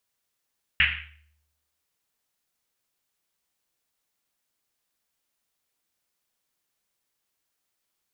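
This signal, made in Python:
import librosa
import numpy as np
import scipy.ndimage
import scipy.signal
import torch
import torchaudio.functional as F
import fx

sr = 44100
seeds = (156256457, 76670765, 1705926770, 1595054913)

y = fx.risset_drum(sr, seeds[0], length_s=1.1, hz=75.0, decay_s=0.94, noise_hz=2300.0, noise_width_hz=1400.0, noise_pct=80)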